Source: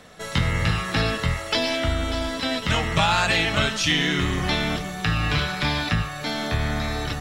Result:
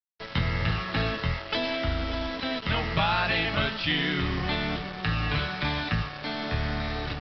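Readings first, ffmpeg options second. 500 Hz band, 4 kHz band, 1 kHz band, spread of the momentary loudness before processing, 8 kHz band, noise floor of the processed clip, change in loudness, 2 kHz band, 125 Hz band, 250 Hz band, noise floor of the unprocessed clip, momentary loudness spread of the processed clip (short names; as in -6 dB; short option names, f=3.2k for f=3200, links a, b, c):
-4.5 dB, -5.5 dB, -4.5 dB, 6 LU, under -20 dB, -40 dBFS, -5.0 dB, -4.5 dB, -4.5 dB, -4.5 dB, -34 dBFS, 6 LU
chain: -af "lowpass=4.2k,aresample=11025,acrusher=bits=4:mix=0:aa=0.5,aresample=44100,volume=-4.5dB"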